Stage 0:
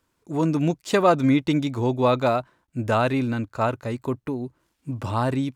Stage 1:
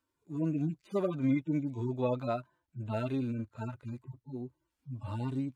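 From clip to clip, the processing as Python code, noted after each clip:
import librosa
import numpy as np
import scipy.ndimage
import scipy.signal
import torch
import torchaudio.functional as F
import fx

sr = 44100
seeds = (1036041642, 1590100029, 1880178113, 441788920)

y = fx.hpss_only(x, sr, part='harmonic')
y = y * librosa.db_to_amplitude(-9.0)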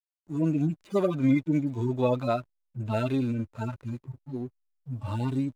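y = fx.high_shelf(x, sr, hz=3900.0, db=6.0)
y = fx.backlash(y, sr, play_db=-54.5)
y = y * librosa.db_to_amplitude(6.0)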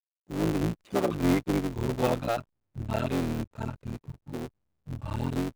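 y = fx.cycle_switch(x, sr, every=3, mode='muted')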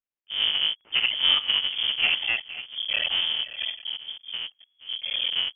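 y = fx.reverse_delay(x, sr, ms=464, wet_db=-14)
y = fx.freq_invert(y, sr, carrier_hz=3300)
y = fx.wow_flutter(y, sr, seeds[0], rate_hz=2.1, depth_cents=27.0)
y = y * librosa.db_to_amplitude(2.5)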